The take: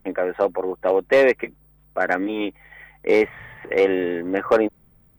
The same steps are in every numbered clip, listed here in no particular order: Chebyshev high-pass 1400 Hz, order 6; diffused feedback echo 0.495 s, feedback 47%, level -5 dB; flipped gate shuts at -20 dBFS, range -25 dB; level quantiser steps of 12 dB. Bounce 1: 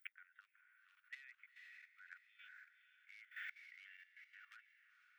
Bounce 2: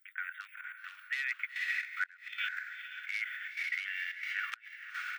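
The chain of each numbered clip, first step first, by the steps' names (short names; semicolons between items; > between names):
diffused feedback echo > flipped gate > Chebyshev high-pass > level quantiser; diffused feedback echo > level quantiser > Chebyshev high-pass > flipped gate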